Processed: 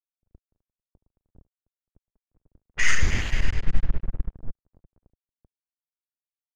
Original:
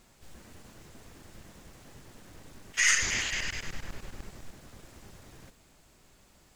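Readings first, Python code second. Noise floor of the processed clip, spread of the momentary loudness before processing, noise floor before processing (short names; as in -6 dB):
under -85 dBFS, 22 LU, -62 dBFS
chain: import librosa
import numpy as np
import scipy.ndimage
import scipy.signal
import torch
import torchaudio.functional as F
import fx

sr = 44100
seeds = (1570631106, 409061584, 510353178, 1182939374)

y = np.sign(x) * np.maximum(np.abs(x) - 10.0 ** (-41.5 / 20.0), 0.0)
y = fx.env_lowpass(y, sr, base_hz=620.0, full_db=-30.5)
y = fx.riaa(y, sr, side='playback')
y = y * 10.0 ** (4.5 / 20.0)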